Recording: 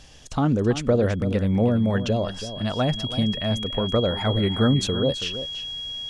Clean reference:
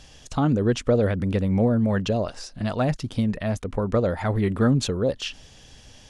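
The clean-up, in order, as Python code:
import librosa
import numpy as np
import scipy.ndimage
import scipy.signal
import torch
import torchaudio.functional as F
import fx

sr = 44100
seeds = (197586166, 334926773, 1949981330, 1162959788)

y = fx.notch(x, sr, hz=3300.0, q=30.0)
y = fx.fix_echo_inverse(y, sr, delay_ms=329, level_db=-11.5)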